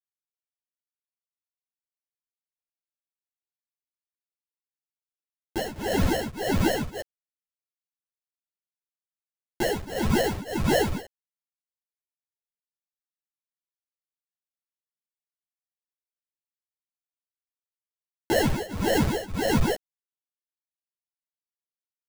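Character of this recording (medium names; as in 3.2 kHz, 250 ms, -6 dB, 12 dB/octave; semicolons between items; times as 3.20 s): a quantiser's noise floor 6-bit, dither none; tremolo triangle 1.7 Hz, depth 95%; aliases and images of a low sample rate 1.2 kHz, jitter 0%; a shimmering, thickened sound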